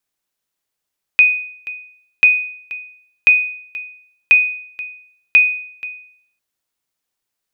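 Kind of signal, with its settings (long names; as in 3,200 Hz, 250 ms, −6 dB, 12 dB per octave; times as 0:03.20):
ping with an echo 2,490 Hz, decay 0.63 s, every 1.04 s, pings 5, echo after 0.48 s, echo −18 dB −3 dBFS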